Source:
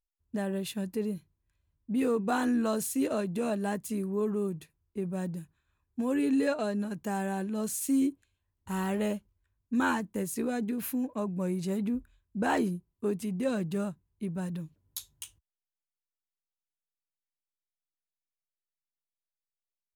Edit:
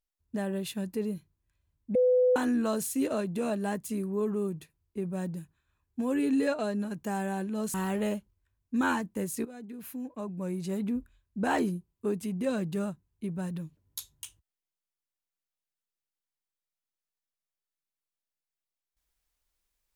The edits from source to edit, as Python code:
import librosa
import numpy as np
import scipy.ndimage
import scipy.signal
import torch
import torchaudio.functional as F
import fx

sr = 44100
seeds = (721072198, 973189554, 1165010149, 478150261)

y = fx.edit(x, sr, fx.bleep(start_s=1.95, length_s=0.41, hz=502.0, db=-19.5),
    fx.cut(start_s=7.74, length_s=0.99),
    fx.fade_in_from(start_s=10.44, length_s=1.51, floor_db=-16.0), tone=tone)